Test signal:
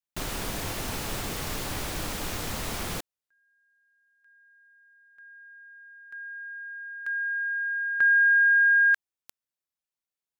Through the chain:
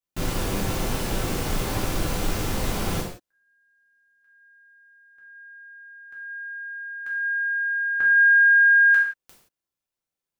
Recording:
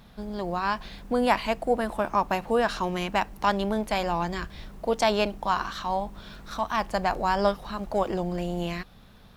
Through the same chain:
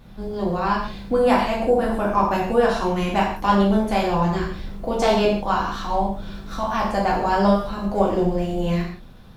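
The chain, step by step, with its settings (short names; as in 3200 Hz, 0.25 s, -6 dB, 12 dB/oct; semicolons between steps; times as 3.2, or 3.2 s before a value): tilt shelf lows +4 dB, about 700 Hz; non-linear reverb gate 0.2 s falling, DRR -4.5 dB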